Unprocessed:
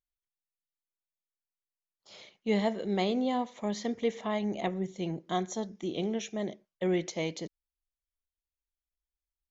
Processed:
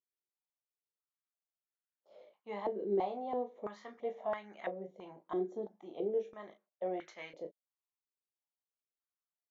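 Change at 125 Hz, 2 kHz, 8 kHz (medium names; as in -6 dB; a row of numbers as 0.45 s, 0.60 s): under -15 dB, -10.0 dB, no reading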